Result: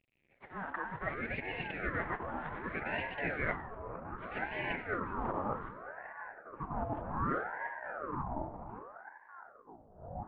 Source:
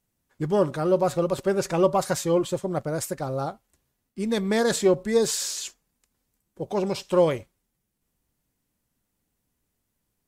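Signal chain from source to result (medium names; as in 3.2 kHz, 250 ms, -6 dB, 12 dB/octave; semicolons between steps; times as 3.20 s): CVSD coder 16 kbps; transient shaper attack -10 dB, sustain +2 dB; reverse; compression 12:1, threshold -37 dBFS, peak gain reduction 19 dB; reverse; high-order bell 890 Hz +10 dB; band-pass sweep 1.4 kHz -> 380 Hz, 4.41–5.93 s; ever faster or slower copies 267 ms, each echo -7 st, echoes 3; reverberation RT60 0.55 s, pre-delay 88 ms, DRR 14 dB; ring modulator with a swept carrier 790 Hz, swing 65%, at 0.65 Hz; trim +7.5 dB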